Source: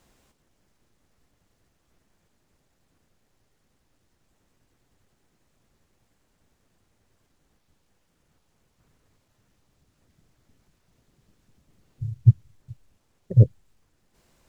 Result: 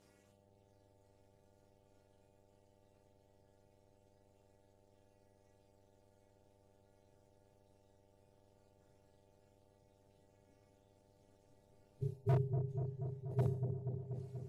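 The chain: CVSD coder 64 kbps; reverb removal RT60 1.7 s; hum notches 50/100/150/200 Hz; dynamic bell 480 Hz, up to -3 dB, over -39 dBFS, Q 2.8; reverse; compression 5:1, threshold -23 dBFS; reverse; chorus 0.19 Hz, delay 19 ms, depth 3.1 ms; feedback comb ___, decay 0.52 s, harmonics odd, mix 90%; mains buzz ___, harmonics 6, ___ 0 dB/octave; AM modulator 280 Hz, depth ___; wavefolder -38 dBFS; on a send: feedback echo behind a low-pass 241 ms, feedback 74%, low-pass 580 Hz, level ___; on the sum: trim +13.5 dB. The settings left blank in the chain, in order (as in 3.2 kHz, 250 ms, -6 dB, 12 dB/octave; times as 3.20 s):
130 Hz, 100 Hz, -80 dBFS, 80%, -5 dB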